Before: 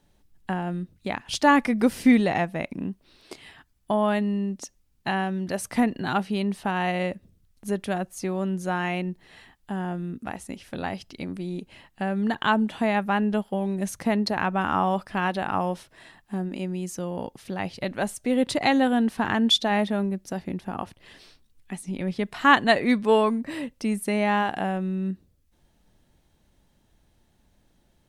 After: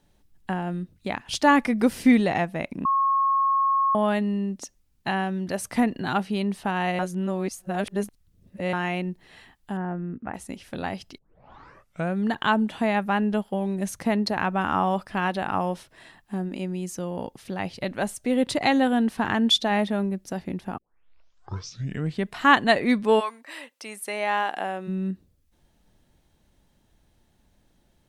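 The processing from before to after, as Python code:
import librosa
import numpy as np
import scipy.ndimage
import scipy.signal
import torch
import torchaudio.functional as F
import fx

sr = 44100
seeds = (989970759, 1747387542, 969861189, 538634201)

y = fx.lowpass(x, sr, hz=2100.0, slope=24, at=(9.77, 10.34))
y = fx.highpass(y, sr, hz=fx.line((23.19, 1100.0), (24.87, 340.0)), slope=12, at=(23.19, 24.87), fade=0.02)
y = fx.edit(y, sr, fx.bleep(start_s=2.85, length_s=1.1, hz=1090.0, db=-18.5),
    fx.reverse_span(start_s=6.99, length_s=1.74),
    fx.tape_start(start_s=11.18, length_s=0.98),
    fx.tape_start(start_s=20.78, length_s=1.52), tone=tone)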